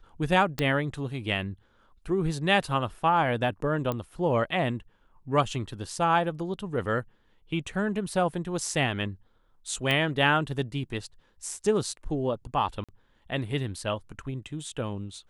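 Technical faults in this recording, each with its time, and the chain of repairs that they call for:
0:00.59: click −13 dBFS
0:03.92: click −17 dBFS
0:09.91: click −14 dBFS
0:12.84–0:12.89: drop-out 46 ms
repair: click removal
repair the gap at 0:12.84, 46 ms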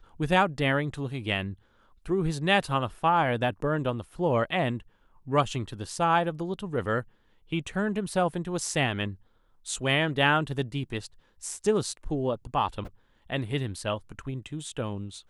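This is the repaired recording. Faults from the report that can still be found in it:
none of them is left

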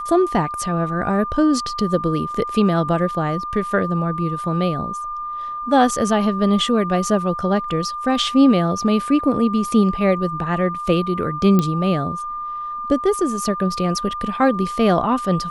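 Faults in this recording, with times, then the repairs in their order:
whistle 1,200 Hz −25 dBFS
0:11.59: click −6 dBFS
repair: click removal
notch filter 1,200 Hz, Q 30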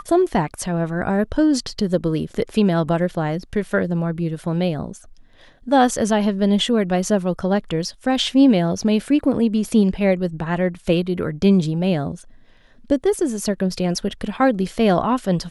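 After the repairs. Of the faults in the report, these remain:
none of them is left

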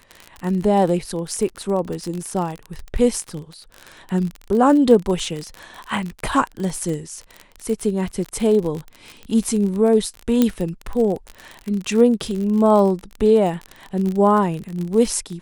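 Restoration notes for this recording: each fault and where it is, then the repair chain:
surface crackle 38 per second −24 dBFS
0:10.42: click −4 dBFS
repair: click removal

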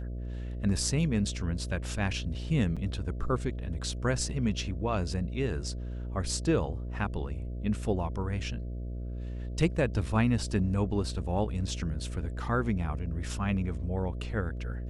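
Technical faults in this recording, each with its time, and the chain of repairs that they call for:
mains buzz 60 Hz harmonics 11 −36 dBFS
0:02.76–0:02.77: drop-out 6.3 ms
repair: hum removal 60 Hz, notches 11
repair the gap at 0:02.76, 6.3 ms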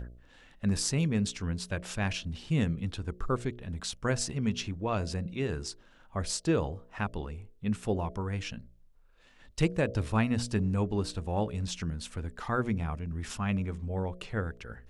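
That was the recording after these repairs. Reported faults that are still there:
none of them is left

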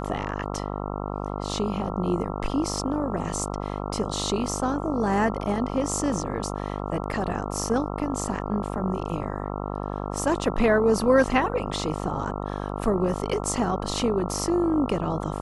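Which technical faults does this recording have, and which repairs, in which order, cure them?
mains buzz 50 Hz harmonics 27 −31 dBFS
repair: hum removal 50 Hz, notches 27

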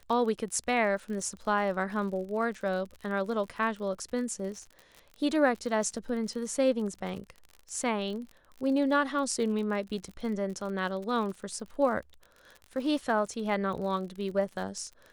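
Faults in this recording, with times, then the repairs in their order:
surface crackle 46 per second −38 dBFS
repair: click removal

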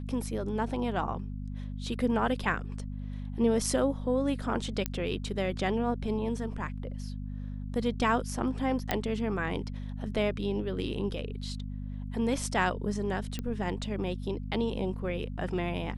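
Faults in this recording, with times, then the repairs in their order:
mains hum 50 Hz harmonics 5 −37 dBFS
0:04.86: click −14 dBFS
0:08.91: click −12 dBFS
0:13.39: click −20 dBFS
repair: click removal
hum removal 50 Hz, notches 5

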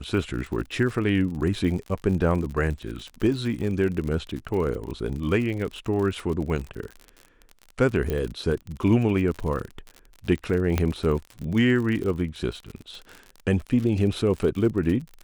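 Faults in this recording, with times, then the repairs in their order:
surface crackle 58 per second −31 dBFS
0:08.10: click −15 dBFS
0:10.78: click −9 dBFS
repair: click removal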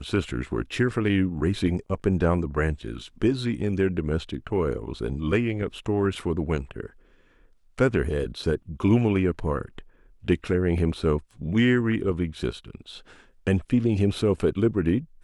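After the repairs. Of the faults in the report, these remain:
0:10.78: click

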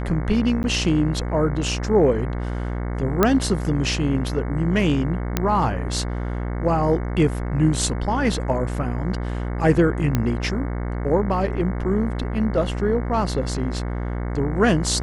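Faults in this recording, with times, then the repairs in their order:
mains buzz 60 Hz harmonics 37 −26 dBFS
0:00.63–0:00.64: drop-out 9.9 ms
0:03.23: click −3 dBFS
0:05.37: click −5 dBFS
0:10.15: click −7 dBFS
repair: click removal
hum removal 60 Hz, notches 37
repair the gap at 0:00.63, 9.9 ms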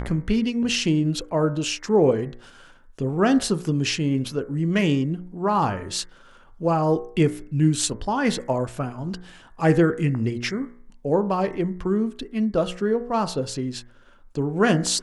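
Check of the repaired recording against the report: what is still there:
none of them is left

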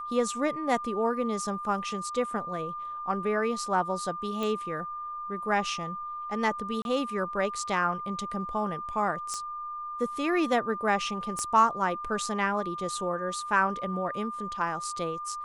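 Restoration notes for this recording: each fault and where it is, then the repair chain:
whistle 1,200 Hz −34 dBFS
0:04.43: click
0:06.82–0:06.85: drop-out 31 ms
0:09.34: click −22 dBFS
0:11.39: click −21 dBFS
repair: click removal
notch filter 1,200 Hz, Q 30
repair the gap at 0:06.82, 31 ms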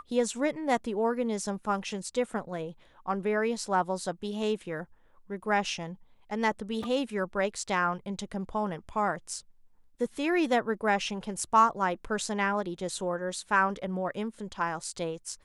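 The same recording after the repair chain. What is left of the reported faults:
0:11.39: click

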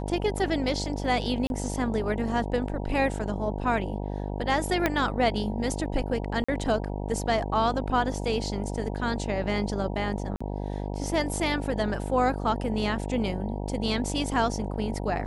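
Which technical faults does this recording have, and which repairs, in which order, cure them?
mains buzz 50 Hz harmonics 19 −32 dBFS
0:01.47–0:01.50: drop-out 31 ms
0:04.86: click −9 dBFS
0:06.44–0:06.49: drop-out 45 ms
0:10.36–0:10.40: drop-out 45 ms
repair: click removal
hum removal 50 Hz, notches 19
repair the gap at 0:01.47, 31 ms
repair the gap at 0:06.44, 45 ms
repair the gap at 0:10.36, 45 ms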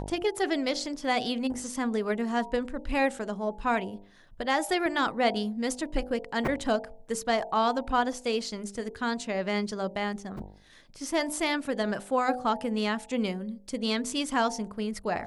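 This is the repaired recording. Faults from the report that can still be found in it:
0:04.86: click

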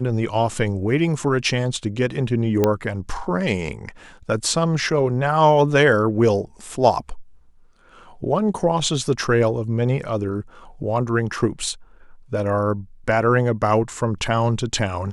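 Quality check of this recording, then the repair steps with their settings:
0:02.64: click −5 dBFS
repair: click removal

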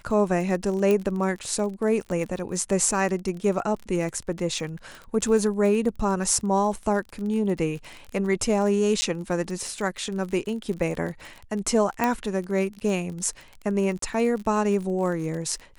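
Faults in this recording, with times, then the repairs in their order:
surface crackle 37 per second −32 dBFS
0:00.91: click −12 dBFS
0:09.01–0:09.02: drop-out 10 ms
0:12.04: click −9 dBFS
0:13.99–0:14.02: drop-out 33 ms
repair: click removal
repair the gap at 0:09.01, 10 ms
repair the gap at 0:13.99, 33 ms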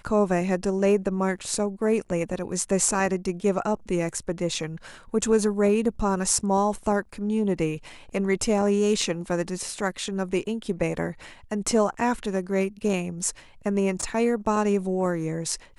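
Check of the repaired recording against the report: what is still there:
0:00.91: click

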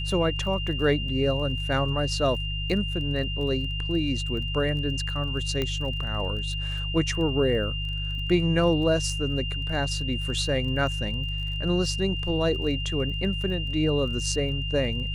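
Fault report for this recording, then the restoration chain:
surface crackle 21 per second −36 dBFS
mains hum 50 Hz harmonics 3 −31 dBFS
whistle 2,800 Hz −32 dBFS
0:05.62: click −14 dBFS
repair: click removal
notch filter 2,800 Hz, Q 30
hum removal 50 Hz, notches 3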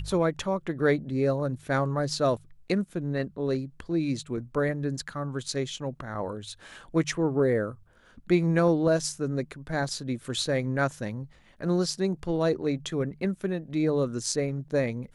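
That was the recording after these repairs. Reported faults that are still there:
none of them is left

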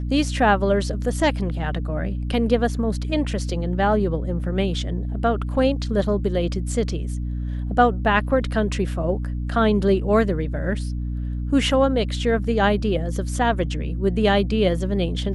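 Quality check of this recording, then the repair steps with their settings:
mains hum 60 Hz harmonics 5 −26 dBFS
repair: hum removal 60 Hz, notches 5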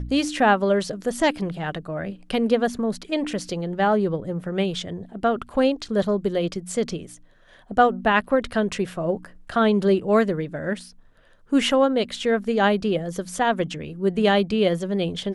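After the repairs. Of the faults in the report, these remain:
none of them is left

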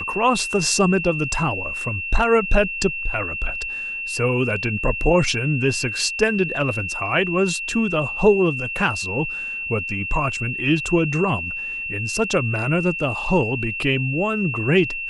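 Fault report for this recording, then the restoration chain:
whistle 2,700 Hz −26 dBFS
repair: notch filter 2,700 Hz, Q 30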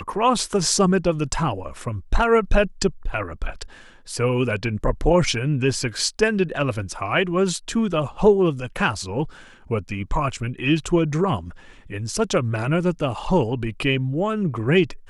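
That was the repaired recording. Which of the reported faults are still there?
none of them is left

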